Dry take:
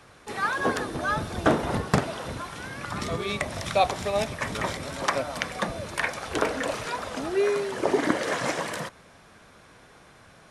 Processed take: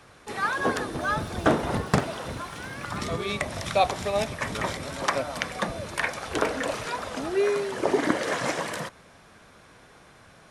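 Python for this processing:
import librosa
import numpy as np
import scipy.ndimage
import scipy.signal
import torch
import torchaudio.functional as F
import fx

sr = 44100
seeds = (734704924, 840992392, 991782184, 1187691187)

y = fx.dmg_crackle(x, sr, seeds[0], per_s=130.0, level_db=-40.0, at=(0.92, 3.05), fade=0.02)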